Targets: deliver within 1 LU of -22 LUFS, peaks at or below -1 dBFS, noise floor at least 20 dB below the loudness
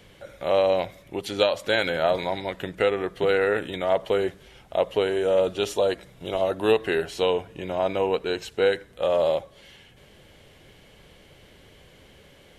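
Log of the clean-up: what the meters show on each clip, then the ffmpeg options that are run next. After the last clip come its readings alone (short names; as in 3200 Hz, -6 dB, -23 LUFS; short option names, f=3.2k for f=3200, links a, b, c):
loudness -25.0 LUFS; peak -6.0 dBFS; loudness target -22.0 LUFS
-> -af "volume=3dB"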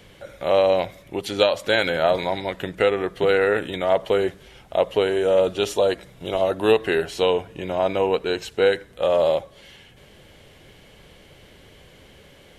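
loudness -22.0 LUFS; peak -3.0 dBFS; noise floor -50 dBFS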